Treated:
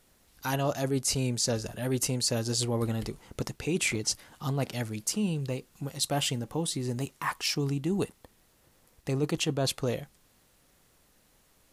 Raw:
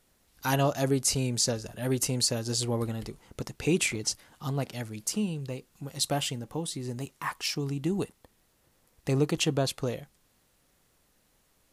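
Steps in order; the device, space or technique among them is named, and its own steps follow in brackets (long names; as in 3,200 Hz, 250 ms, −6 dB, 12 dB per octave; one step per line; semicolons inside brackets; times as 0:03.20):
compression on the reversed sound (reversed playback; downward compressor 10 to 1, threshold −28 dBFS, peak gain reduction 9 dB; reversed playback)
level +3.5 dB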